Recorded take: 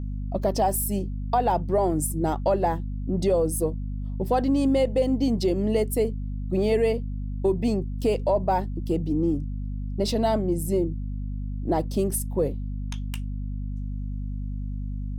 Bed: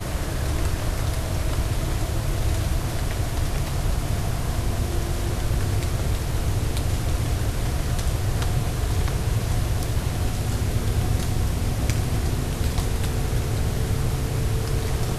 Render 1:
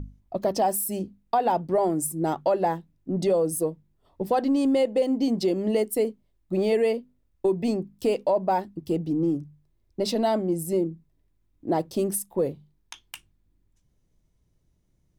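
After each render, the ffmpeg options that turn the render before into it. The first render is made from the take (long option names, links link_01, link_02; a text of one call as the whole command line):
ffmpeg -i in.wav -af "bandreject=frequency=50:width_type=h:width=6,bandreject=frequency=100:width_type=h:width=6,bandreject=frequency=150:width_type=h:width=6,bandreject=frequency=200:width_type=h:width=6,bandreject=frequency=250:width_type=h:width=6" out.wav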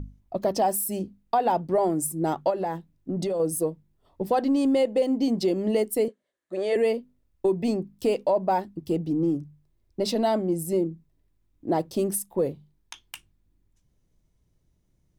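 ffmpeg -i in.wav -filter_complex "[0:a]asettb=1/sr,asplit=3[link_01][link_02][link_03];[link_01]atrim=end=2.504[link_04];[link_02]atrim=start=2.5:end=3.4,asetpts=PTS-STARTPTS,afade=type=in:duration=0.004:curve=qsin,afade=type=out:start_time=0.896:duration=0.004:curve=qsin,acompressor=threshold=-24dB:ratio=6:attack=3.2:release=140:knee=1:detection=peak[link_05];[link_03]atrim=start=3.396[link_06];[link_04][link_05]acrossfade=duration=0.004:curve1=hsin:curve2=qsin[link_07];[link_07][link_06]acrossfade=duration=0.004:curve1=qsin:curve2=hsin,asettb=1/sr,asplit=3[link_08][link_09][link_10];[link_08]atrim=end=6.084[link_11];[link_09]atrim=start=6.08:end=6.76,asetpts=PTS-STARTPTS,afade=type=in:duration=0.004:curve=qsin,afade=type=out:start_time=0.676:duration=0.004:curve=qsin,highpass=480,equalizer=frequency=540:width_type=q:width=4:gain=7,equalizer=frequency=860:width_type=q:width=4:gain=-5,equalizer=frequency=1700:width_type=q:width=4:gain=10,equalizer=frequency=2500:width_type=q:width=4:gain=-4,equalizer=frequency=5100:width_type=q:width=4:gain=-6,lowpass=frequency=9700:width=0.5412,lowpass=frequency=9700:width=1.3066[link_12];[link_10]atrim=start=6.756[link_13];[link_11][link_12]acrossfade=duration=0.004:curve1=hsin:curve2=qsin[link_14];[link_14][link_13]acrossfade=duration=0.004:curve1=qsin:curve2=hsin" out.wav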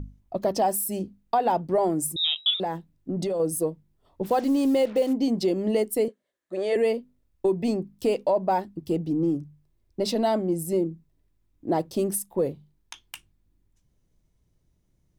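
ffmpeg -i in.wav -filter_complex "[0:a]asettb=1/sr,asplit=3[link_01][link_02][link_03];[link_01]atrim=end=2.164[link_04];[link_02]atrim=start=2.16:end=2.6,asetpts=PTS-STARTPTS,afade=type=in:duration=0.004:curve=qsin,afade=type=out:start_time=0.436:duration=0.004:curve=qsin,lowpass=frequency=3400:width_type=q:width=0.5098,lowpass=frequency=3400:width_type=q:width=0.6013,lowpass=frequency=3400:width_type=q:width=0.9,lowpass=frequency=3400:width_type=q:width=2.563,afreqshift=-4000[link_05];[link_03]atrim=start=2.596[link_06];[link_04][link_05]acrossfade=duration=0.004:curve1=hsin:curve2=qsin[link_07];[link_07][link_06]acrossfade=duration=0.004:curve1=qsin:curve2=hsin,asplit=3[link_08][link_09][link_10];[link_08]afade=type=out:start_time=4.23:duration=0.02[link_11];[link_09]acrusher=bits=6:mix=0:aa=0.5,afade=type=in:start_time=4.23:duration=0.02,afade=type=out:start_time=5.12:duration=0.02[link_12];[link_10]afade=type=in:start_time=5.12:duration=0.02[link_13];[link_11][link_12][link_13]amix=inputs=3:normalize=0" out.wav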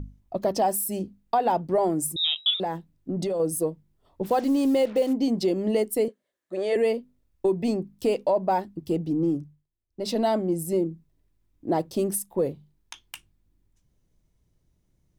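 ffmpeg -i in.wav -filter_complex "[0:a]asplit=3[link_01][link_02][link_03];[link_01]atrim=end=9.67,asetpts=PTS-STARTPTS,afade=type=out:start_time=9.4:duration=0.27:silence=0.125893[link_04];[link_02]atrim=start=9.67:end=9.89,asetpts=PTS-STARTPTS,volume=-18dB[link_05];[link_03]atrim=start=9.89,asetpts=PTS-STARTPTS,afade=type=in:duration=0.27:silence=0.125893[link_06];[link_04][link_05][link_06]concat=n=3:v=0:a=1" out.wav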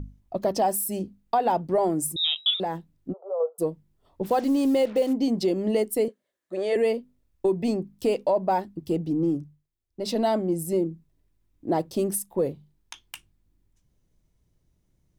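ffmpeg -i in.wav -filter_complex "[0:a]asplit=3[link_01][link_02][link_03];[link_01]afade=type=out:start_time=3.12:duration=0.02[link_04];[link_02]asuperpass=centerf=770:order=20:qfactor=0.82,afade=type=in:start_time=3.12:duration=0.02,afade=type=out:start_time=3.58:duration=0.02[link_05];[link_03]afade=type=in:start_time=3.58:duration=0.02[link_06];[link_04][link_05][link_06]amix=inputs=3:normalize=0" out.wav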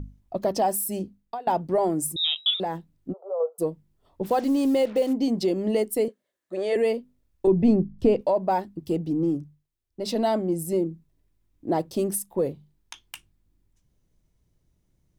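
ffmpeg -i in.wav -filter_complex "[0:a]asettb=1/sr,asplit=3[link_01][link_02][link_03];[link_01]atrim=end=7.474[link_04];[link_02]atrim=start=7.47:end=8.21,asetpts=PTS-STARTPTS,afade=type=in:duration=0.004:curve=qsin,afade=type=out:start_time=0.736:duration=0.004:curve=qsin,aemphasis=mode=reproduction:type=riaa[link_05];[link_03]atrim=start=8.206[link_06];[link_04][link_05]acrossfade=duration=0.004:curve1=hsin:curve2=qsin[link_07];[link_07][link_06]acrossfade=duration=0.004:curve1=qsin:curve2=hsin,asplit=2[link_08][link_09];[link_08]atrim=end=1.47,asetpts=PTS-STARTPTS,afade=type=out:start_time=1:duration=0.47:silence=0.0794328[link_10];[link_09]atrim=start=1.47,asetpts=PTS-STARTPTS,afade=type=in:duration=0.004:curve=hsin:silence=0.0794328[link_11];[link_10][link_11]concat=n=2:v=0:a=1" out.wav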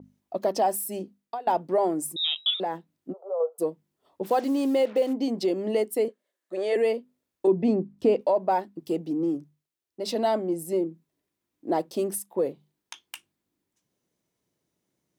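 ffmpeg -i in.wav -af "highpass=270,adynamicequalizer=threshold=0.00447:dfrequency=4000:dqfactor=0.7:tfrequency=4000:tqfactor=0.7:attack=5:release=100:ratio=0.375:range=3:mode=cutabove:tftype=highshelf" out.wav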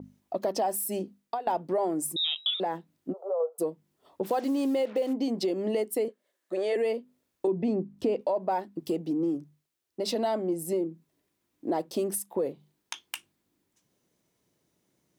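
ffmpeg -i in.wav -filter_complex "[0:a]asplit=2[link_01][link_02];[link_02]alimiter=limit=-19.5dB:level=0:latency=1,volume=-2dB[link_03];[link_01][link_03]amix=inputs=2:normalize=0,acompressor=threshold=-31dB:ratio=2" out.wav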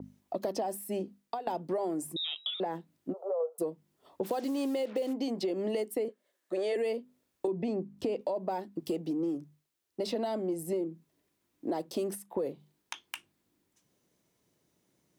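ffmpeg -i in.wav -filter_complex "[0:a]acrossover=split=460|3000[link_01][link_02][link_03];[link_01]acompressor=threshold=-33dB:ratio=4[link_04];[link_02]acompressor=threshold=-35dB:ratio=4[link_05];[link_03]acompressor=threshold=-44dB:ratio=4[link_06];[link_04][link_05][link_06]amix=inputs=3:normalize=0" out.wav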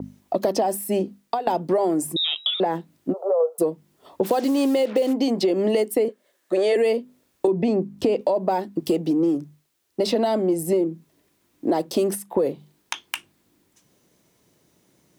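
ffmpeg -i in.wav -af "volume=11.5dB" out.wav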